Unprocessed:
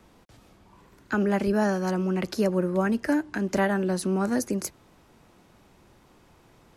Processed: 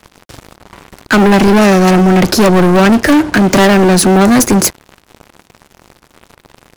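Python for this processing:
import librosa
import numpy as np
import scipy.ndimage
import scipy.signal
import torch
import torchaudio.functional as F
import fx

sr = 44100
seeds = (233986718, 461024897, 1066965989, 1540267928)

y = fx.leveller(x, sr, passes=5)
y = F.gain(torch.from_numpy(y), 8.5).numpy()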